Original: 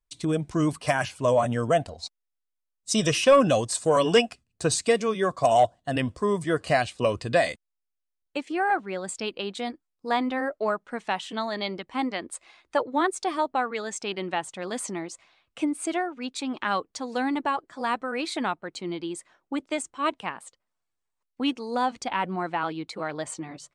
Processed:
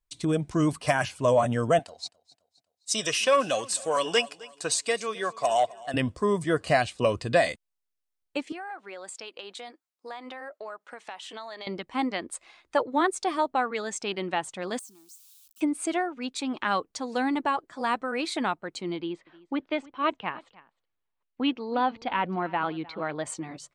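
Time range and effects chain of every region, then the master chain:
0:01.79–0:05.94: high-pass filter 900 Hz 6 dB per octave + repeating echo 261 ms, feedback 45%, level −21 dB
0:08.52–0:11.67: high-pass filter 500 Hz + downward compressor 4 to 1, threshold −37 dBFS
0:14.79–0:15.61: spike at every zero crossing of −30.5 dBFS + guitar amp tone stack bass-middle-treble 6-0-2 + phaser with its sweep stopped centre 540 Hz, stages 6
0:18.96–0:23.25: low-pass filter 3,800 Hz 24 dB per octave + single-tap delay 306 ms −21.5 dB
whole clip: no processing

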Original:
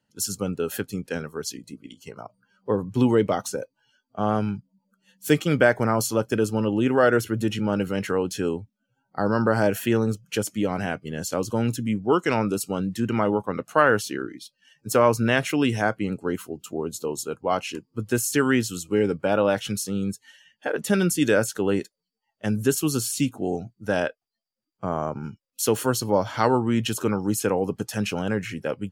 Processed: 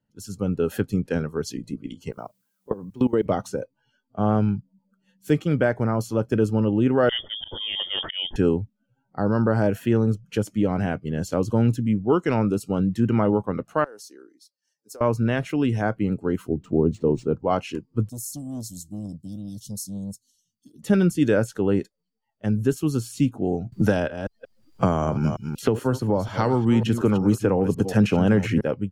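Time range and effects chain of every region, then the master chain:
0:02.11–0:03.25: Bessel high-pass filter 210 Hz + output level in coarse steps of 21 dB + background noise violet −68 dBFS
0:07.09–0:08.36: dynamic equaliser 1,300 Hz, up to −5 dB, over −37 dBFS, Q 0.81 + volume swells 123 ms + voice inversion scrambler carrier 3,400 Hz
0:13.84–0:15.01: high-pass filter 360 Hz 24 dB per octave + downward compressor 4 to 1, threshold −23 dBFS + drawn EQ curve 110 Hz 0 dB, 340 Hz −12 dB, 850 Hz −13 dB, 3,100 Hz −21 dB, 4,700 Hz +2 dB
0:16.48–0:17.40: tilt shelving filter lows +8.5 dB, about 780 Hz + linearly interpolated sample-rate reduction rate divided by 3×
0:18.09–0:20.83: inverse Chebyshev band-stop filter 480–2,500 Hz + first-order pre-emphasis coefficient 0.8 + saturating transformer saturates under 2,200 Hz
0:23.72–0:28.61: delay that plays each chunk backwards 183 ms, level −13 dB + multiband upward and downward compressor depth 100%
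whole clip: de-essing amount 35%; spectral tilt −2.5 dB per octave; automatic gain control; level −7 dB

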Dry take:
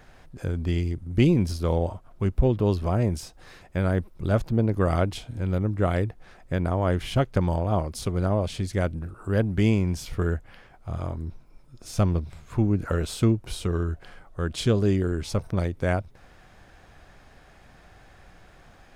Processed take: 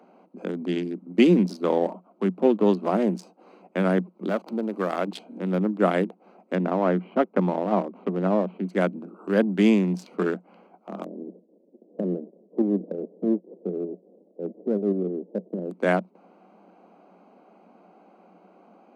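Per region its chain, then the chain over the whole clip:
0:04.29–0:05.07: converter with a step at zero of −36.5 dBFS + low-shelf EQ 360 Hz −8 dB + downward compressor 1.5 to 1, threshold −30 dBFS
0:06.55–0:08.69: running median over 9 samples + high-frequency loss of the air 350 metres
0:11.03–0:15.70: spectral envelope flattened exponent 0.3 + Butterworth low-pass 530 Hz + shaped tremolo saw up 6.5 Hz, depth 45%
whole clip: adaptive Wiener filter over 25 samples; Chebyshev high-pass filter 180 Hz, order 8; high-shelf EQ 7,600 Hz −5.5 dB; level +5.5 dB

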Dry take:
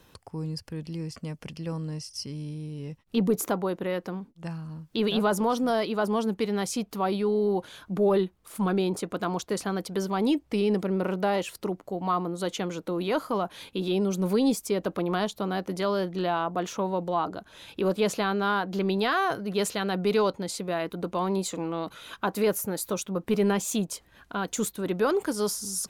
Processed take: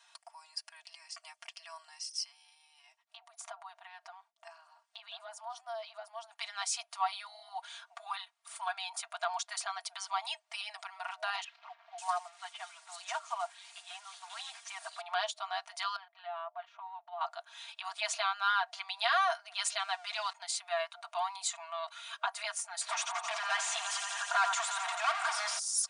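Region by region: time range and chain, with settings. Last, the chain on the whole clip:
0:02.27–0:06.31: downward compressor 12 to 1, threshold −31 dBFS + tilt shelving filter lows +5.5 dB, about 780 Hz
0:11.44–0:15.01: linear delta modulator 64 kbit/s, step −39.5 dBFS + three-band delay without the direct sound mids, lows, highs 340/540 ms, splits 260/3,500 Hz + expander for the loud parts, over −39 dBFS
0:15.96–0:17.21: output level in coarse steps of 17 dB + high-frequency loss of the air 380 metres
0:19.79–0:20.33: converter with a step at zero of −41 dBFS + high-shelf EQ 6,800 Hz −5.5 dB
0:22.81–0:25.59: feedback echo with a high-pass in the loop 87 ms, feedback 83%, high-pass 200 Hz, level −15.5 dB + mid-hump overdrive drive 30 dB, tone 1,200 Hz, clips at −14.5 dBFS
whole clip: brick-wall band-pass 630–10,000 Hz; tilt shelving filter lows −4 dB, about 940 Hz; comb filter 4.3 ms, depth 85%; level −6 dB

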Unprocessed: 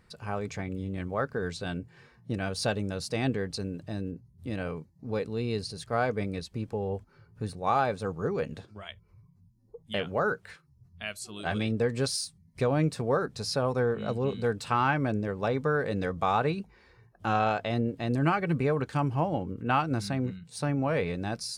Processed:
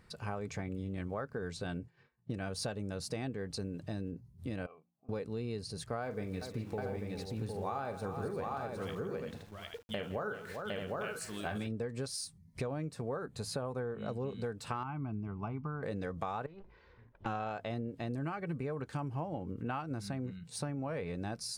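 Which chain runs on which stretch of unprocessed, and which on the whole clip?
0:01.67–0:02.45: low-pass that shuts in the quiet parts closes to 2,600 Hz, open at −31 dBFS + downward expander −47 dBFS
0:04.66–0:05.09: dynamic equaliser 750 Hz, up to −6 dB, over −51 dBFS, Q 1.3 + formant filter a + hum removal 58.05 Hz, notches 5
0:06.02–0:11.67: hum removal 163.9 Hz, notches 18 + centre clipping without the shift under −50 dBFS + multi-tap delay 43/163/394/759/839 ms −11/−18.5/−14/−4.5/−8.5 dB
0:13.09–0:14.06: de-essing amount 30% + parametric band 5,400 Hz −12 dB 0.26 octaves
0:14.83–0:15.83: head-to-tape spacing loss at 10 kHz 34 dB + phaser with its sweep stopped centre 2,600 Hz, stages 8
0:16.46–0:17.26: lower of the sound and its delayed copy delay 2 ms + downward compressor 5 to 1, threshold −43 dBFS + high-frequency loss of the air 250 metres
whole clip: dynamic equaliser 3,500 Hz, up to −4 dB, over −46 dBFS, Q 0.73; downward compressor 6 to 1, threshold −35 dBFS

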